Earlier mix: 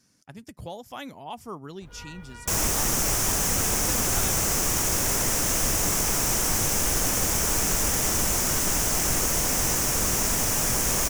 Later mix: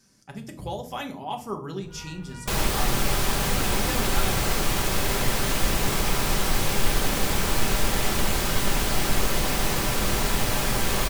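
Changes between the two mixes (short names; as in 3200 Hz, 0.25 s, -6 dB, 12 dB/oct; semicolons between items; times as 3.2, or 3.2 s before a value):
second sound: add resonant high shelf 5000 Hz -6 dB, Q 3; reverb: on, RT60 0.45 s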